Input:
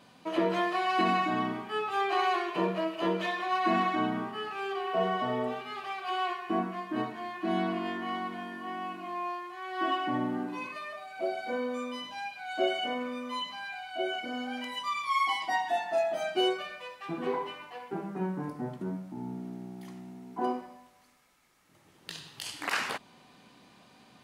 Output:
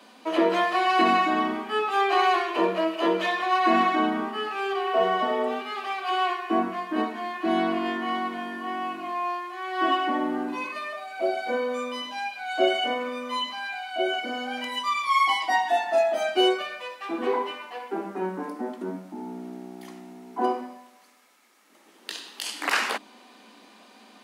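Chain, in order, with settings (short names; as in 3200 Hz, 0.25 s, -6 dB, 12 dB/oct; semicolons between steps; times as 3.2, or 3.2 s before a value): steep high-pass 200 Hz 96 dB/oct; notches 50/100/150/200/250/300/350 Hz; gain +6.5 dB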